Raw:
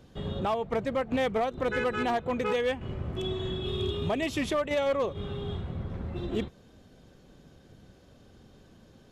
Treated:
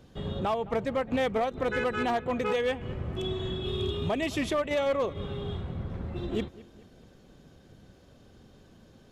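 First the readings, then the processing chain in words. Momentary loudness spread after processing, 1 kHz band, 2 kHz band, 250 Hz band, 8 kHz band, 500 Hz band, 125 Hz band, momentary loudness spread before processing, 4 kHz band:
8 LU, 0.0 dB, 0.0 dB, 0.0 dB, 0.0 dB, 0.0 dB, 0.0 dB, 8 LU, 0.0 dB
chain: bucket-brigade echo 212 ms, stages 4096, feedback 50%, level -19.5 dB

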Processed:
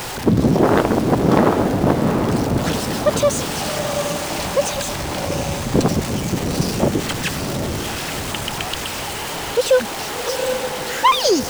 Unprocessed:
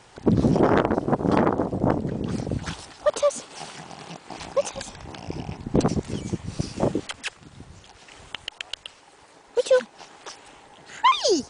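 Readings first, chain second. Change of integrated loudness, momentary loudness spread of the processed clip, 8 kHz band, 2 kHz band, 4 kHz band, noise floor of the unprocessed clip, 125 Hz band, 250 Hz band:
+5.5 dB, 8 LU, +11.5 dB, +9.0 dB, +9.0 dB, -52 dBFS, +7.0 dB, +6.5 dB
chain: jump at every zero crossing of -26 dBFS; echo that smears into a reverb 760 ms, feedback 47%, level -5.5 dB; trim +3 dB

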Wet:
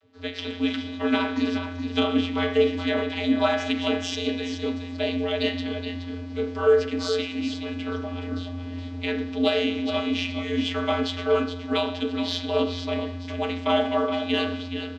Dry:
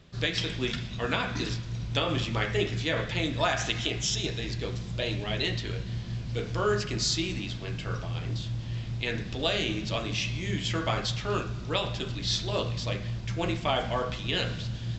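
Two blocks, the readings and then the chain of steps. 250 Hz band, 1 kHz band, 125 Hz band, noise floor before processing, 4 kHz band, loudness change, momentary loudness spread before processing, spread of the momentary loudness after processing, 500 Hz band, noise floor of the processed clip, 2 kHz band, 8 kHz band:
+9.5 dB, +3.5 dB, -5.5 dB, -38 dBFS, +0.5 dB, +4.0 dB, 7 LU, 9 LU, +8.0 dB, -35 dBFS, +1.5 dB, -8.0 dB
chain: dynamic bell 3.2 kHz, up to +6 dB, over -45 dBFS, Q 2.1; vocoder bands 32, square 88.4 Hz; treble shelf 6.1 kHz -6.5 dB; level rider gain up to 9.5 dB; delay 422 ms -9 dB; in parallel at -10 dB: saturation -16 dBFS, distortion -10 dB; on the sum: trim -6.5 dB

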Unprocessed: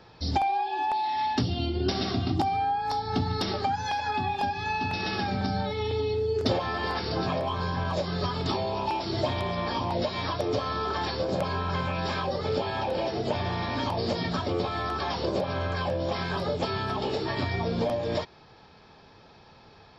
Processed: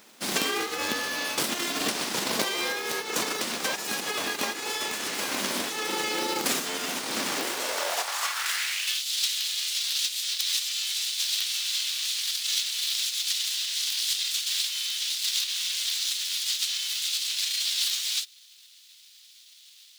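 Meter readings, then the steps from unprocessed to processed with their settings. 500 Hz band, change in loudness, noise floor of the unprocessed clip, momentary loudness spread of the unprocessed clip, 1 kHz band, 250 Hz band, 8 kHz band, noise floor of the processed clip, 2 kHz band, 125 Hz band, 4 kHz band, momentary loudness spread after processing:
-8.0 dB, +2.5 dB, -54 dBFS, 2 LU, -8.0 dB, -7.0 dB, no reading, -54 dBFS, +4.0 dB, under -20 dB, +10.0 dB, 3 LU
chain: formants flattened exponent 0.3; full-wave rectifier; high-pass sweep 230 Hz -> 3.6 kHz, 7.29–9.03 s; trim +2.5 dB

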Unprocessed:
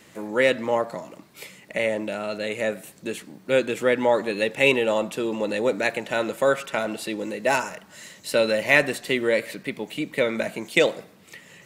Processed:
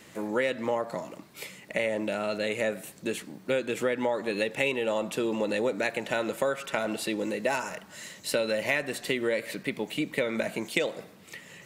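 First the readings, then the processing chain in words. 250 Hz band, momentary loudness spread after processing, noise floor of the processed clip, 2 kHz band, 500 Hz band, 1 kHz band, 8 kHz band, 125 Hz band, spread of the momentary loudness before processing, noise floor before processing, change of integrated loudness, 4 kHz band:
-3.5 dB, 10 LU, -52 dBFS, -6.5 dB, -6.0 dB, -6.0 dB, -2.5 dB, -4.0 dB, 15 LU, -52 dBFS, -6.0 dB, -5.0 dB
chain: compression 6:1, threshold -24 dBFS, peak gain reduction 12 dB

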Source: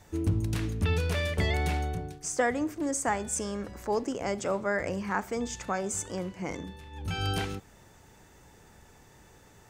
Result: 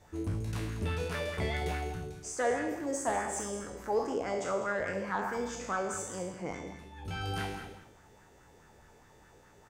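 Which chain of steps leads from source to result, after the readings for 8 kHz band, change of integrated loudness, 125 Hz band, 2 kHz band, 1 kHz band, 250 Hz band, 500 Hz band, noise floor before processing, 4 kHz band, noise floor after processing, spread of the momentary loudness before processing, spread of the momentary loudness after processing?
-5.0 dB, -3.5 dB, -6.5 dB, -3.0 dB, -1.5 dB, -5.5 dB, -1.5 dB, -57 dBFS, -6.0 dB, -59 dBFS, 8 LU, 9 LU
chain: spectral sustain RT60 0.85 s; treble shelf 8.8 kHz -4.5 dB; saturation -18 dBFS, distortion -21 dB; on a send: delay 200 ms -12 dB; on the sum: sweeping bell 4.8 Hz 420–1600 Hz +9 dB; trim -7.5 dB

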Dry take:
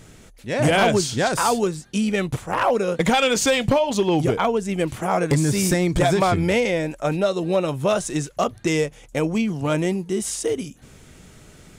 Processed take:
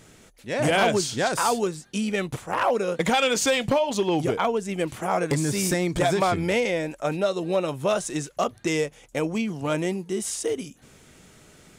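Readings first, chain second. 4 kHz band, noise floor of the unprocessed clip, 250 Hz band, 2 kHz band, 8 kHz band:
-2.5 dB, -48 dBFS, -4.5 dB, -2.5 dB, -2.5 dB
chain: bass shelf 130 Hz -9.5 dB; trim -2.5 dB

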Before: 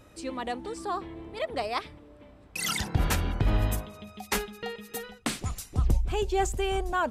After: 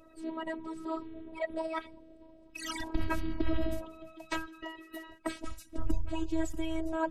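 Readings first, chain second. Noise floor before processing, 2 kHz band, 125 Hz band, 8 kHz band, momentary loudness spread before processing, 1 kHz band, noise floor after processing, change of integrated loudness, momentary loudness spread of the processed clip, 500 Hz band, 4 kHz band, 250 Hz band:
-54 dBFS, -7.0 dB, -12.5 dB, -13.5 dB, 11 LU, -8.5 dB, -57 dBFS, -7.0 dB, 13 LU, -6.0 dB, -10.0 dB, 0.0 dB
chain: coarse spectral quantiser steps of 30 dB; treble shelf 2.8 kHz -11.5 dB; robot voice 322 Hz

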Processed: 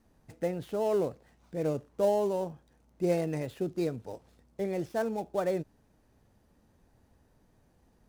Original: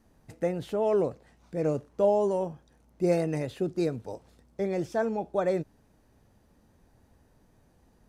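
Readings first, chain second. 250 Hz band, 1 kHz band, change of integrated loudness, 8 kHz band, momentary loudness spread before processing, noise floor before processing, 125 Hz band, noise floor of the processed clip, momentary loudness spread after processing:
-3.0 dB, -3.0 dB, -3.0 dB, 0.0 dB, 13 LU, -64 dBFS, -3.0 dB, -67 dBFS, 13 LU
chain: dead-time distortion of 0.065 ms; trim -3 dB

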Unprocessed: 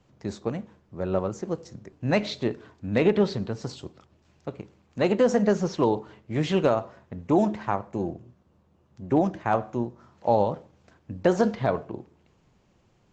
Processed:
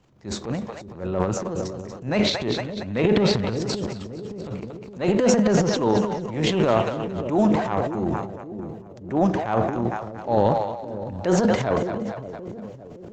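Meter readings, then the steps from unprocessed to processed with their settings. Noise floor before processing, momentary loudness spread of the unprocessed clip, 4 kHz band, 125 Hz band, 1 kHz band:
-64 dBFS, 18 LU, +9.0 dB, +4.5 dB, +3.0 dB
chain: two-band feedback delay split 540 Hz, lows 569 ms, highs 229 ms, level -10.5 dB; transient shaper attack -9 dB, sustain +11 dB; trim +2 dB

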